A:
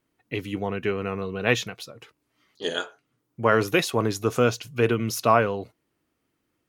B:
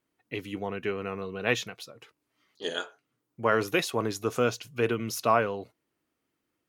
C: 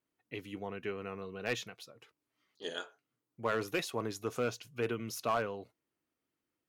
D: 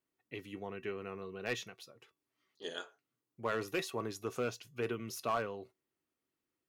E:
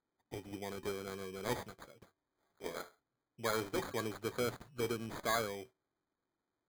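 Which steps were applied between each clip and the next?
low-shelf EQ 140 Hz −7 dB; level −4 dB
gain into a clipping stage and back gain 16.5 dB; level −7.5 dB
tuned comb filter 380 Hz, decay 0.19 s, harmonics odd, mix 60%; level +5 dB
decimation without filtering 16×

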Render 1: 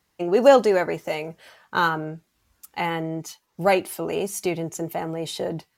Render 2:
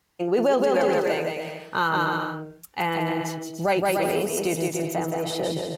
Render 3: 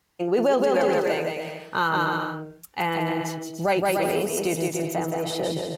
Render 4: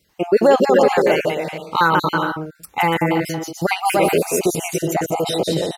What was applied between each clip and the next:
bouncing-ball delay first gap 170 ms, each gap 0.7×, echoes 5; brickwall limiter −13 dBFS, peak gain reduction 10 dB
no processing that can be heard
time-frequency cells dropped at random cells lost 30%; level +8.5 dB

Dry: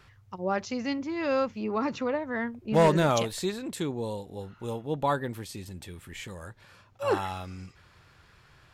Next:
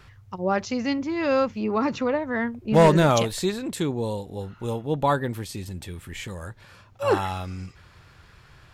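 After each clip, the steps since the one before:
low-shelf EQ 120 Hz +5 dB
level +4.5 dB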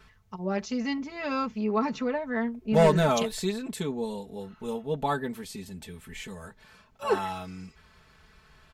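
comb filter 4.6 ms, depth 92%
level −7 dB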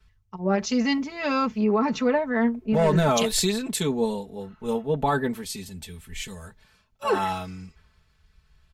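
brickwall limiter −22 dBFS, peak gain reduction 11.5 dB
multiband upward and downward expander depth 70%
level +7.5 dB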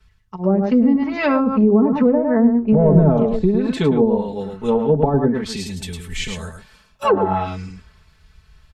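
single-tap delay 106 ms −6 dB
treble cut that deepens with the level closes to 460 Hz, closed at −18 dBFS
automatic gain control gain up to 4.5 dB
level +4.5 dB

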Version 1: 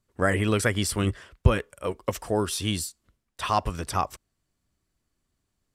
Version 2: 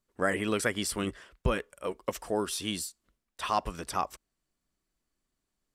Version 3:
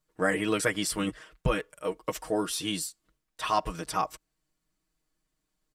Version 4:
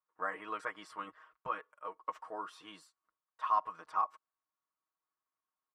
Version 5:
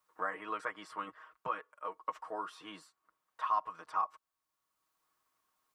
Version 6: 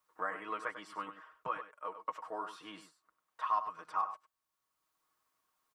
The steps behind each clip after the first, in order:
parametric band 94 Hz −13 dB 0.91 octaves; level −4 dB
comb filter 6.4 ms, depth 80%
resonant band-pass 1,100 Hz, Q 3.9
multiband upward and downward compressor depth 40%; level +1 dB
single-tap delay 98 ms −11 dB; level −1 dB

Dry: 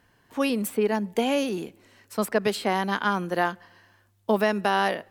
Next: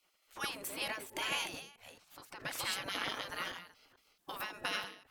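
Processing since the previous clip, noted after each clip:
delay that plays each chunk backwards 220 ms, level 0 dB
gate on every frequency bin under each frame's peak −15 dB weak
every ending faded ahead of time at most 100 dB per second
level −3.5 dB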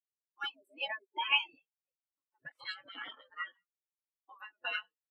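every bin expanded away from the loudest bin 4 to 1
level +7 dB

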